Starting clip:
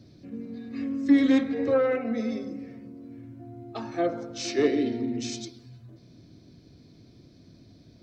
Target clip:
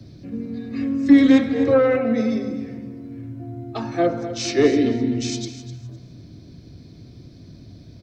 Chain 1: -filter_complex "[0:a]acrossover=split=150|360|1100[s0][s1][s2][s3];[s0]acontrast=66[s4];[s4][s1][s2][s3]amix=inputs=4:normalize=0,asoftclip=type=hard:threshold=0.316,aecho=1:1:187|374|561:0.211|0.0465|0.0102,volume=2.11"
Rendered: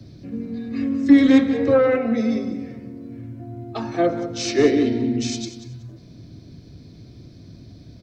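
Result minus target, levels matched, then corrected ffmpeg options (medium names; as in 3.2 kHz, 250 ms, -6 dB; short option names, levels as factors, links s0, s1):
echo 67 ms early
-filter_complex "[0:a]acrossover=split=150|360|1100[s0][s1][s2][s3];[s0]acontrast=66[s4];[s4][s1][s2][s3]amix=inputs=4:normalize=0,asoftclip=type=hard:threshold=0.316,aecho=1:1:254|508|762:0.211|0.0465|0.0102,volume=2.11"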